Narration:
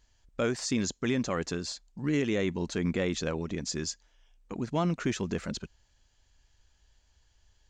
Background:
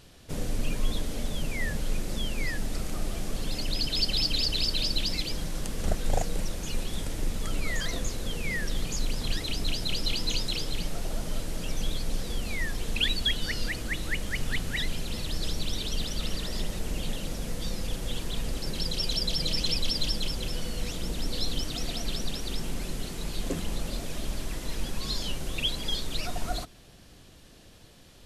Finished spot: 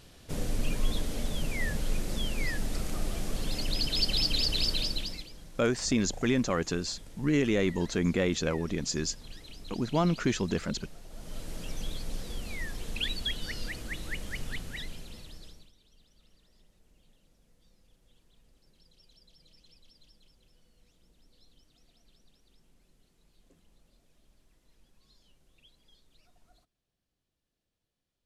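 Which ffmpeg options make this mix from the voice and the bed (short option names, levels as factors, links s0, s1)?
-filter_complex "[0:a]adelay=5200,volume=1.26[s0];[1:a]volume=2.99,afade=t=out:st=4.7:d=0.59:silence=0.16788,afade=t=in:st=11.09:d=0.42:silence=0.298538,afade=t=out:st=14.34:d=1.38:silence=0.0446684[s1];[s0][s1]amix=inputs=2:normalize=0"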